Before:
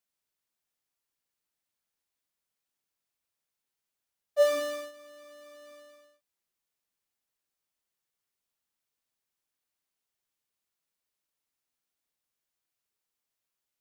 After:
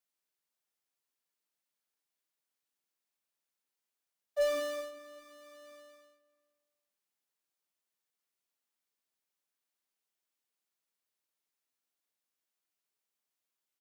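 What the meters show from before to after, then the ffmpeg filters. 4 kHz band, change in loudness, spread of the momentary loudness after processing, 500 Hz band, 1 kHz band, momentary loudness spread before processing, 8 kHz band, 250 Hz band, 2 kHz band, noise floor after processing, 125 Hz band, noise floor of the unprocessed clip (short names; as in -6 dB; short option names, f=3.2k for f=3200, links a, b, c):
-4.0 dB, -6.0 dB, 23 LU, -5.5 dB, -5.0 dB, 15 LU, -4.5 dB, -3.5 dB, -4.0 dB, under -85 dBFS, n/a, under -85 dBFS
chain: -filter_complex "[0:a]highpass=190,acrossover=split=390[a][b];[b]asoftclip=type=tanh:threshold=-24.5dB[c];[a][c]amix=inputs=2:normalize=0,asplit=2[d][e];[e]adelay=392,lowpass=f=1.8k:p=1,volume=-18dB,asplit=2[f][g];[g]adelay=392,lowpass=f=1.8k:p=1,volume=0.25[h];[d][f][h]amix=inputs=3:normalize=0,volume=-2.5dB"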